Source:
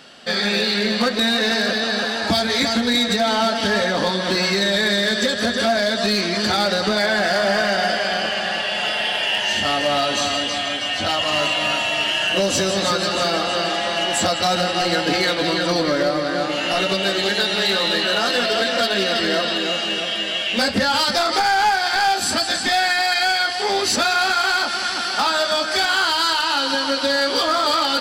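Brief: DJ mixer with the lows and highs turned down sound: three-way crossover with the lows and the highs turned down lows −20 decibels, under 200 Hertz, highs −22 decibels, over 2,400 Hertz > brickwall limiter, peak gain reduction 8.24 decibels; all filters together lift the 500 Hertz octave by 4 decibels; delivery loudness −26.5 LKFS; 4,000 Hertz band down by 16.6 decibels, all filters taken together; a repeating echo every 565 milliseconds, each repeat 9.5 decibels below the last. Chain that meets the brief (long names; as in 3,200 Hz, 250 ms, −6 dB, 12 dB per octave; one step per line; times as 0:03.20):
three-way crossover with the lows and the highs turned down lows −20 dB, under 200 Hz, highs −22 dB, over 2,400 Hz
parametric band 500 Hz +5.5 dB
parametric band 4,000 Hz −7 dB
repeating echo 565 ms, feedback 33%, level −9.5 dB
level −3.5 dB
brickwall limiter −18 dBFS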